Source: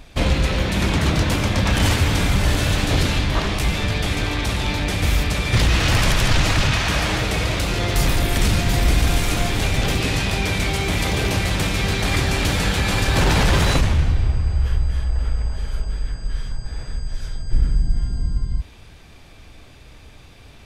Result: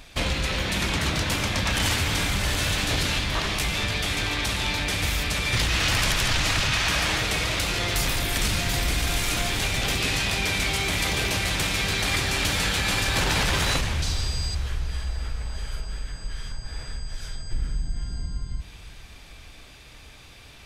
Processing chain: 14.02–14.55 resonant high shelf 3200 Hz +13 dB, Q 1.5; compressor 1.5:1, threshold -23 dBFS, peak gain reduction 5 dB; tilt shelf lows -4.5 dB; diffused feedback echo 0.497 s, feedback 54%, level -16 dB; gain -1.5 dB

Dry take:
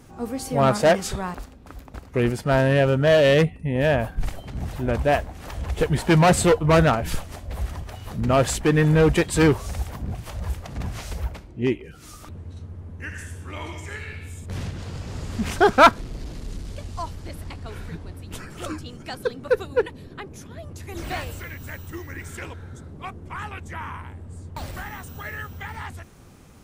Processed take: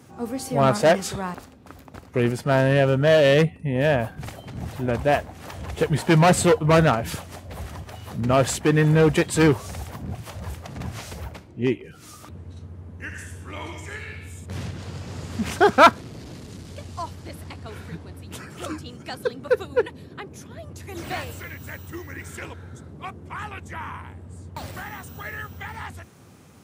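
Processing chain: HPF 82 Hz 24 dB/oct

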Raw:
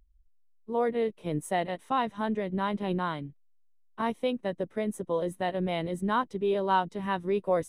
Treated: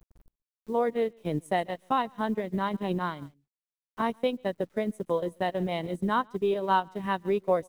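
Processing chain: requantised 10-bit, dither none; echo 0.139 s -19.5 dB; transient shaper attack +3 dB, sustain -10 dB

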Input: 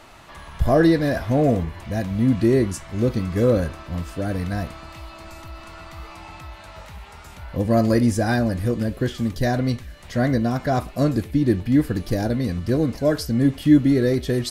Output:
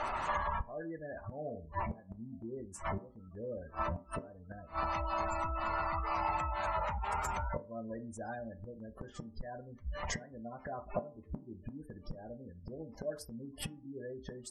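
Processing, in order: spectral gate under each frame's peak -20 dB strong; flipped gate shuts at -19 dBFS, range -29 dB; compressor 4:1, threshold -42 dBFS, peak gain reduction 15 dB; ten-band EQ 125 Hz -6 dB, 250 Hz -7 dB, 1000 Hz +8 dB, 4000 Hz -9 dB, 8000 Hz +11 dB; on a send: reverb RT60 0.45 s, pre-delay 3 ms, DRR 9 dB; on the sum: gain +7.5 dB

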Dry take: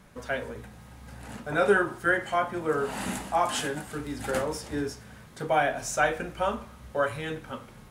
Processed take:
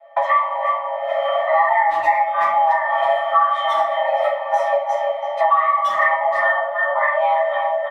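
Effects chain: gate -45 dBFS, range -33 dB; graphic EQ 125/500/2000/4000/8000 Hz +8/+8/+7/-5/-6 dB; 3.78–4.92 negative-ratio compressor -30 dBFS, ratio -0.5; octave resonator E, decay 0.17 s; frequency shift +490 Hz; speakerphone echo 0.33 s, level -9 dB; shoebox room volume 63 m³, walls mixed, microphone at 2.2 m; three-band squash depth 100%; gain +9 dB

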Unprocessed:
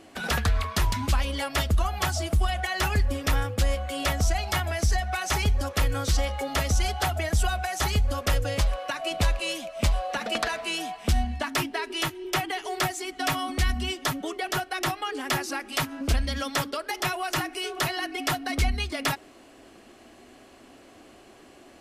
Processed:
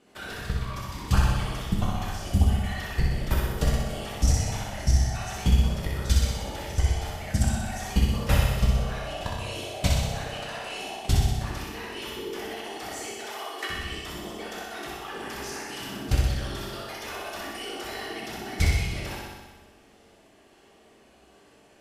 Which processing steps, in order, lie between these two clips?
whisperiser; level quantiser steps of 21 dB; 13.13–13.7 steep high-pass 340 Hz; on a send: flutter echo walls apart 10.7 m, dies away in 1.1 s; on the sum: two-slope reverb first 0.85 s, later 2.9 s, from -24 dB, DRR -1.5 dB

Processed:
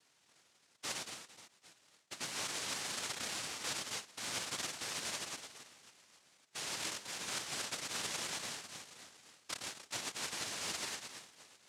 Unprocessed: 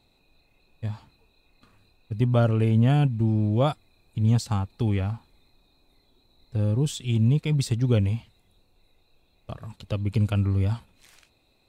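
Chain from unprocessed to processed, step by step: four-band scrambler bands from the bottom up 2143; in parallel at -4 dB: sample gate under -33.5 dBFS; on the sum: LFO band-pass square 0.55 Hz 500–3200 Hz; split-band echo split 2000 Hz, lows 0.112 s, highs 0.27 s, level -9.5 dB; noise vocoder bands 1; reverse; compressor 12:1, threshold -41 dBFS, peak gain reduction 20.5 dB; reverse; gain +3.5 dB

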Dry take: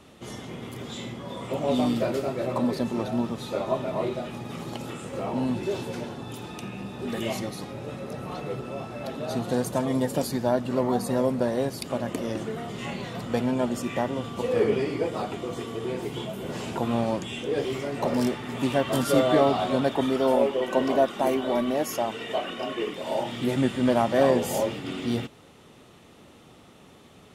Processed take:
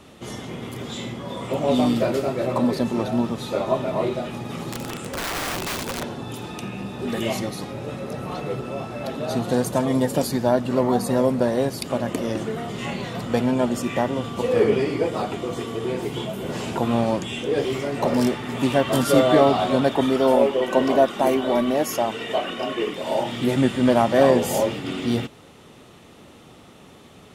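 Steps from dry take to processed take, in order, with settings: 4.7–6.03 wrapped overs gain 27 dB; gain +4.5 dB

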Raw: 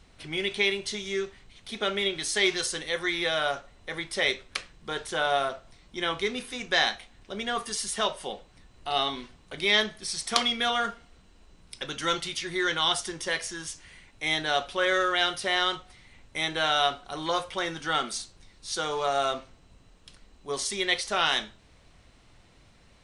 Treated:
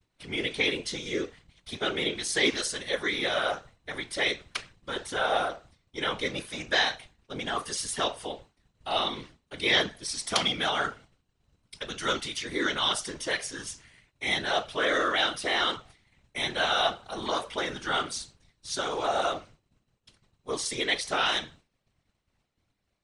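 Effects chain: expander -44 dBFS; whisperiser; gain -1 dB

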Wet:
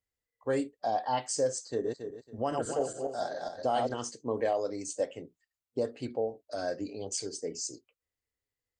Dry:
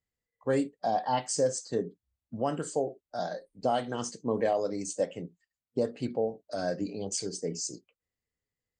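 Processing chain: 1.69–3.94 regenerating reverse delay 0.138 s, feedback 47%, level -2 dB; bell 180 Hz -13 dB 0.49 oct; gain -1.5 dB

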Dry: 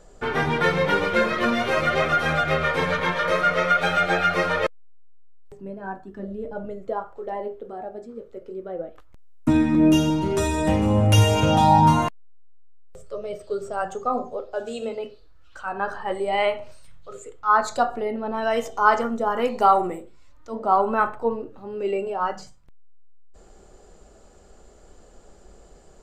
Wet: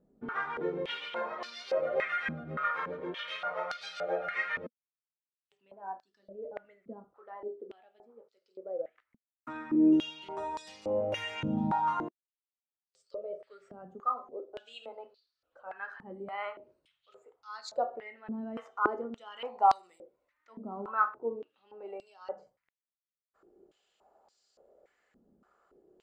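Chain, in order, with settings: stepped band-pass 3.5 Hz 230–4700 Hz; gain -2.5 dB

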